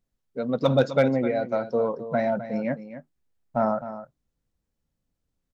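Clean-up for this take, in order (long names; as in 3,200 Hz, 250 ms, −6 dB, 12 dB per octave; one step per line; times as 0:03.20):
clipped peaks rebuilt −9.5 dBFS
echo removal 258 ms −12.5 dB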